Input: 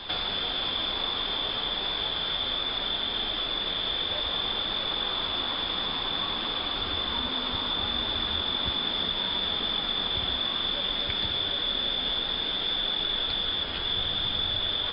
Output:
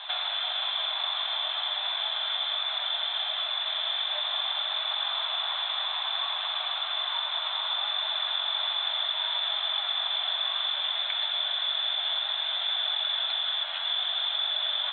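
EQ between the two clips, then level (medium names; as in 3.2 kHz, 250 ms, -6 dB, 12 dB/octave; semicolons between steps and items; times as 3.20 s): brick-wall FIR band-pass 590–4200 Hz; 0.0 dB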